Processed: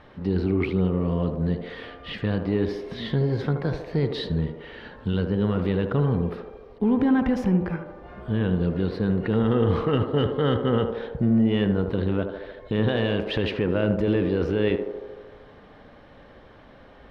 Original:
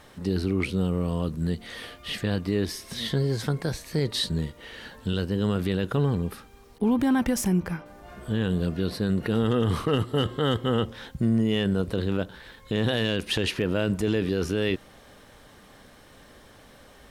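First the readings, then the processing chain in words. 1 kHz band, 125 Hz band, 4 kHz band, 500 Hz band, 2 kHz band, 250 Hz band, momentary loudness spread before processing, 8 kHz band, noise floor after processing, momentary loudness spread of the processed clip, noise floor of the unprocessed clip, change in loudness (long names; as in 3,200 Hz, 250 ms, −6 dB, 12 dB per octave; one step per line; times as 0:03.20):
+1.5 dB, +2.0 dB, −5.0 dB, +3.5 dB, −0.5 dB, +2.5 dB, 10 LU, below −20 dB, −49 dBFS, 12 LU, −52 dBFS, +2.0 dB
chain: in parallel at −9 dB: gain into a clipping stage and back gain 21.5 dB
on the sum: high-frequency loss of the air 320 metres
feedback echo with a band-pass in the loop 76 ms, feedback 77%, band-pass 570 Hz, level −5 dB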